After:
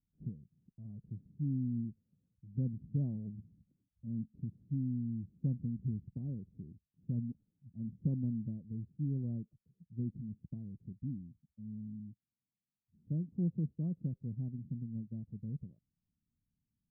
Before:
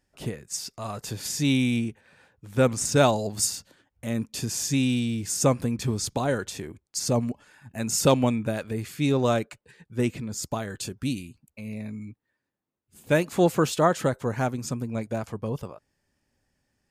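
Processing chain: ladder low-pass 230 Hz, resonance 40%; gain -3 dB

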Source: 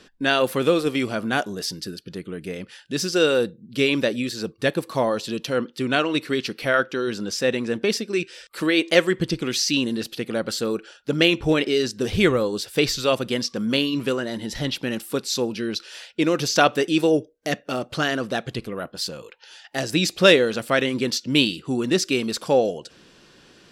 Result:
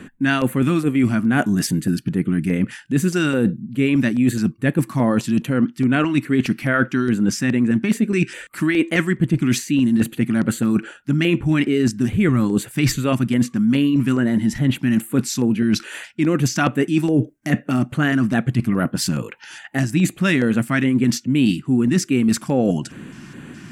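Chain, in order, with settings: graphic EQ 125/250/500/2000/4000/8000 Hz +11/+11/-5/+6/-11/+4 dB; LFO notch square 2.4 Hz 480–5300 Hz; reverse; compressor 6:1, threshold -24 dBFS, peak gain reduction 16 dB; reverse; gain +9 dB

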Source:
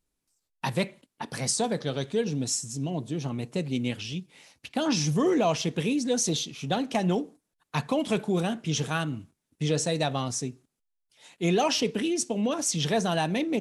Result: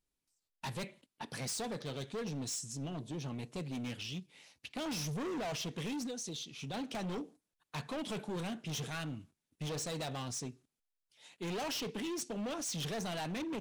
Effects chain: bell 3400 Hz +3.5 dB 1.7 oct; 6.06–6.74 compressor 10:1, threshold -30 dBFS, peak gain reduction 9.5 dB; overloaded stage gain 28 dB; gain -8 dB

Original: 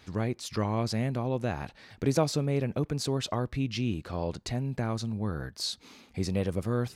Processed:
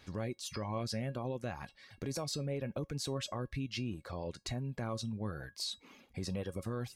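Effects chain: reverb removal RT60 0.68 s; limiter -25.5 dBFS, peak gain reduction 11.5 dB; resonator 550 Hz, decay 0.16 s, harmonics all, mix 70%; gain +5.5 dB

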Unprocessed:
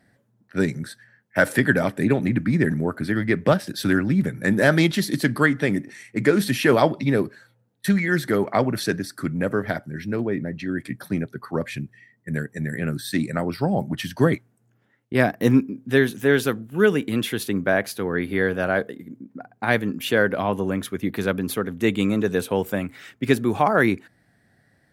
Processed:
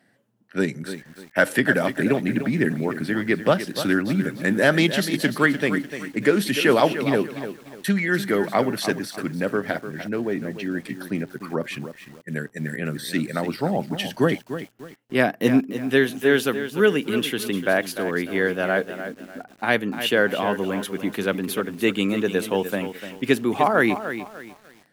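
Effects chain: HPF 180 Hz 12 dB/oct; bell 2900 Hz +7 dB 0.29 oct; lo-fi delay 0.297 s, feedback 35%, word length 7-bit, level -10.5 dB

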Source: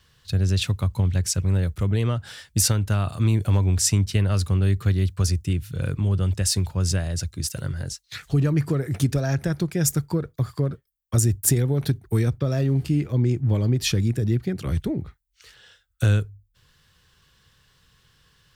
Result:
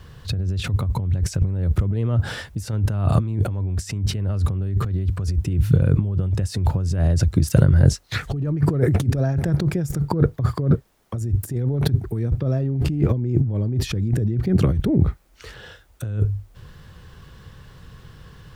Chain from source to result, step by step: requantised 12-bit, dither triangular; negative-ratio compressor -31 dBFS, ratio -1; tilt shelf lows +8.5 dB, about 1500 Hz; gain +3 dB

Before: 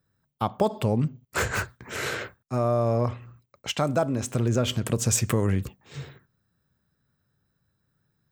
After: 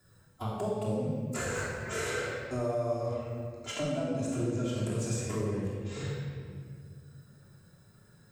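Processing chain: 3.72–5.97 high shelf 6600 Hz -7.5 dB; harmonic-percussive split percussive -15 dB; graphic EQ 125/500/8000 Hz -8/+5/+11 dB; compressor, threshold -35 dBFS, peak gain reduction 15.5 dB; flange 0.33 Hz, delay 0.5 ms, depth 5.6 ms, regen +70%; reverb RT60 1.6 s, pre-delay 3 ms, DRR -9 dB; three-band squash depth 40%

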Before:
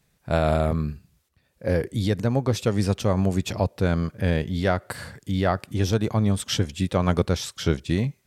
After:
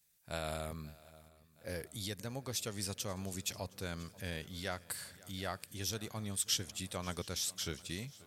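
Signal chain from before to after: pre-emphasis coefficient 0.9; on a send: swung echo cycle 0.716 s, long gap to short 3:1, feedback 54%, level -21.5 dB; on the sum: gain -1 dB

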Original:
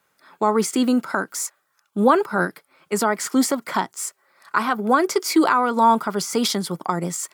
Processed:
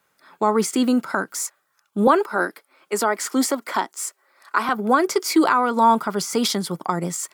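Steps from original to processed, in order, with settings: 2.07–4.69 HPF 250 Hz 24 dB/oct

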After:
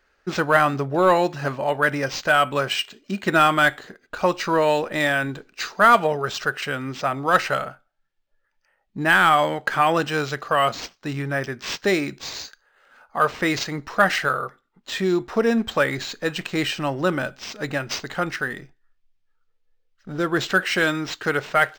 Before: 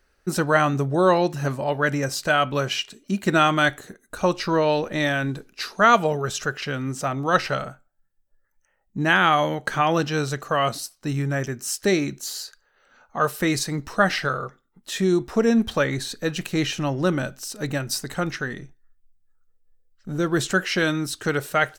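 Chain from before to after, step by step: overdrive pedal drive 9 dB, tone 5500 Hz, clips at -3.5 dBFS; decimation joined by straight lines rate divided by 4×

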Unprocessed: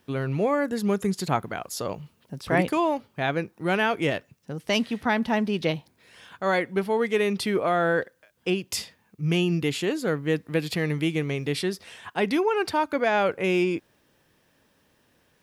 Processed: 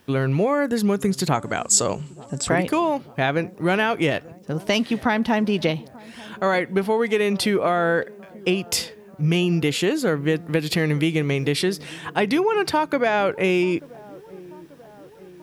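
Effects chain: compressor, threshold -24 dBFS, peak gain reduction 8 dB; 1.34–2.49 synth low-pass 7700 Hz, resonance Q 13; dark delay 0.887 s, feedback 61%, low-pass 950 Hz, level -21 dB; gain +7.5 dB

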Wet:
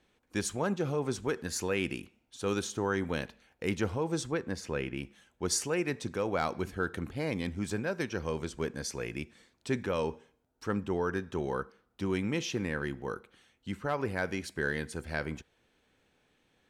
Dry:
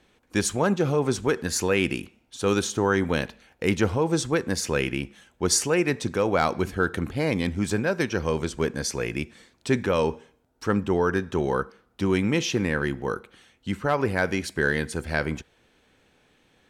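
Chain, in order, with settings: 4.31–4.96 high shelf 6600 Hz -> 3600 Hz -12 dB; gain -8.5 dB

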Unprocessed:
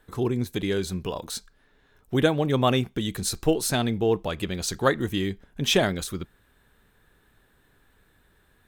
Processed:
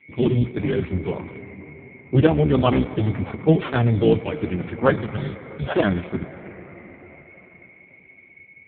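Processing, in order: octaver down 1 oct, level +2 dB; HPF 57 Hz 6 dB/oct; low-pass opened by the level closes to 490 Hz, open at -18 dBFS; decimation with a swept rate 10×, swing 60% 0.78 Hz; 4.99–5.77 fixed phaser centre 1500 Hz, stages 8; whine 2200 Hz -45 dBFS; on a send at -12.5 dB: reverb RT60 5.3 s, pre-delay 13 ms; on the sum: gain +5.5 dB; AMR-NB 4.75 kbps 8000 Hz

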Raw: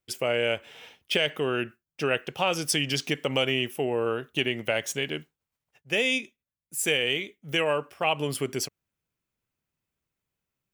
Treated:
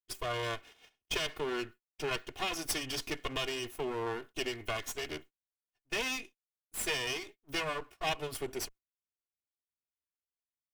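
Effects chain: minimum comb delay 2.8 ms; gate -47 dBFS, range -16 dB; gain -5.5 dB

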